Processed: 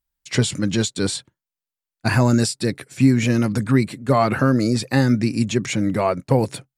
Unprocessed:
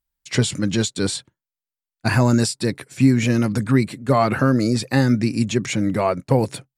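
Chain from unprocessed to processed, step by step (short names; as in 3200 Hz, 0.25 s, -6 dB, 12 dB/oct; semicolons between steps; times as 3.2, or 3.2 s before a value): 2.28–2.88 bell 980 Hz -8.5 dB 0.21 oct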